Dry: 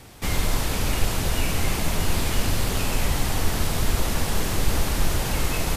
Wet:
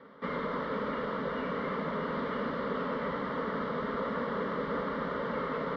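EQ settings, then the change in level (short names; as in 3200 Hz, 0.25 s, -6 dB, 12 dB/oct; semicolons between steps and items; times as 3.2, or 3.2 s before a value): air absorption 200 m; speaker cabinet 320–2700 Hz, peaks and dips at 630 Hz -5 dB, 950 Hz -4 dB, 1600 Hz -7 dB; fixed phaser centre 510 Hz, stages 8; +5.0 dB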